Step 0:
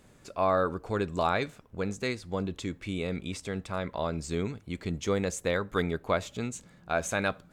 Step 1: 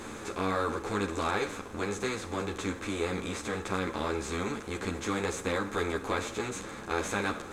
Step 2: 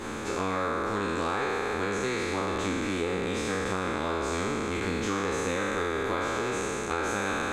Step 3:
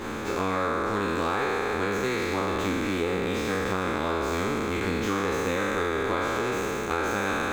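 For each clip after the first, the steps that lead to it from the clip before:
spectral levelling over time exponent 0.4; graphic EQ with 31 bands 160 Hz -7 dB, 315 Hz +6 dB, 630 Hz -10 dB; three-phase chorus; trim -3 dB
spectral sustain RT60 2.71 s; treble shelf 5.8 kHz -6 dB; compression, threshold -29 dBFS, peak gain reduction 7.5 dB; trim +3.5 dB
median filter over 5 samples; trim +2.5 dB

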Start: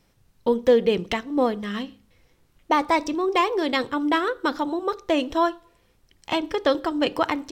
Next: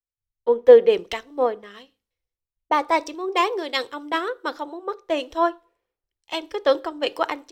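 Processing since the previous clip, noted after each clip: resonant low shelf 290 Hz -11 dB, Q 1.5; three bands expanded up and down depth 100%; trim -2 dB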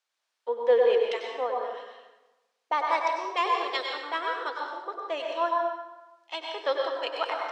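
word length cut 12-bit, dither triangular; band-pass 580–5400 Hz; plate-style reverb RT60 1.1 s, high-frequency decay 0.75×, pre-delay 85 ms, DRR 0 dB; trim -6 dB

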